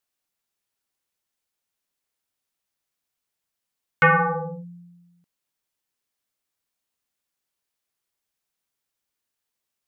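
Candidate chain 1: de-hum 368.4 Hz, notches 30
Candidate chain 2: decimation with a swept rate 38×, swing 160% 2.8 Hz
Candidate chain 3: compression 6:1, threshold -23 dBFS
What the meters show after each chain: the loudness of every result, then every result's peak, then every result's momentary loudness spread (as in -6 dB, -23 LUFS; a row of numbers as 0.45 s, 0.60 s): -20.5 LUFS, -21.5 LUFS, -28.0 LUFS; -9.0 dBFS, -10.0 dBFS, -9.5 dBFS; 18 LU, 17 LU, 15 LU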